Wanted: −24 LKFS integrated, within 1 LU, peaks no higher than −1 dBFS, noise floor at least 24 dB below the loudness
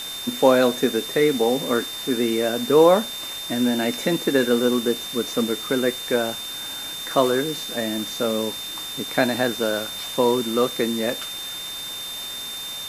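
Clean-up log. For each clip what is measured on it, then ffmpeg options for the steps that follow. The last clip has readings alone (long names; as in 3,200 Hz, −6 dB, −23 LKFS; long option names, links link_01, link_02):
interfering tone 3,600 Hz; level of the tone −31 dBFS; background noise floor −32 dBFS; target noise floor −47 dBFS; integrated loudness −22.5 LKFS; sample peak −4.0 dBFS; target loudness −24.0 LKFS
→ -af "bandreject=frequency=3600:width=30"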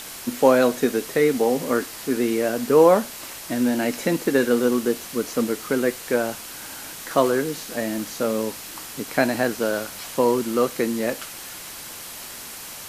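interfering tone none found; background noise floor −37 dBFS; target noise floor −47 dBFS
→ -af "afftdn=noise_reduction=10:noise_floor=-37"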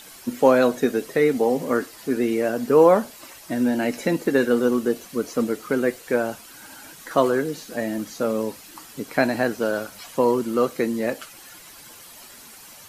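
background noise floor −45 dBFS; target noise floor −47 dBFS
→ -af "afftdn=noise_reduction=6:noise_floor=-45"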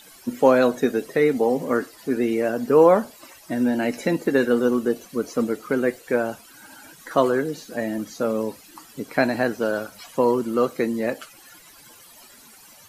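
background noise floor −49 dBFS; integrated loudness −22.5 LKFS; sample peak −4.5 dBFS; target loudness −24.0 LKFS
→ -af "volume=-1.5dB"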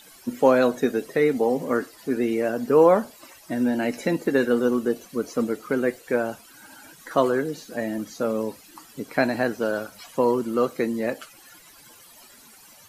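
integrated loudness −24.0 LKFS; sample peak −6.0 dBFS; background noise floor −50 dBFS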